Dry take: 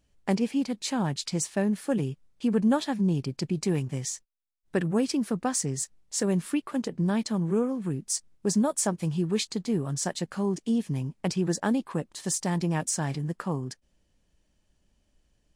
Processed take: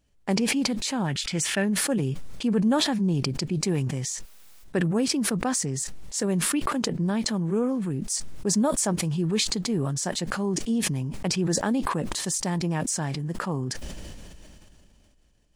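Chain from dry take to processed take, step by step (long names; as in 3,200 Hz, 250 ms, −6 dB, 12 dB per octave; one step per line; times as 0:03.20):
gain on a spectral selection 0:01.09–0:01.66, 1,300–3,600 Hz +8 dB
level that may fall only so fast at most 21 dB per second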